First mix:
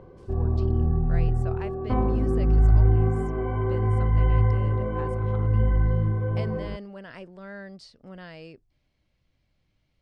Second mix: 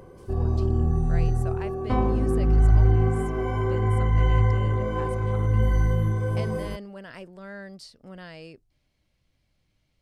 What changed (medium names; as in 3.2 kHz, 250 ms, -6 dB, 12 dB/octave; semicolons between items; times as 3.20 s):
background: remove distance through air 450 m; master: remove distance through air 80 m